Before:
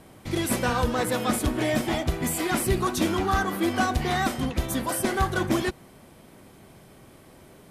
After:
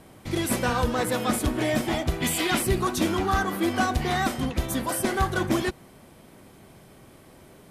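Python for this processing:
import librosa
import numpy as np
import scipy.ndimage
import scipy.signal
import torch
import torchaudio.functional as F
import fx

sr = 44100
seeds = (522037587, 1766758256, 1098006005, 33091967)

y = fx.peak_eq(x, sr, hz=3200.0, db=fx.line((2.2, 13.0), (2.61, 6.0)), octaves=1.2, at=(2.2, 2.61), fade=0.02)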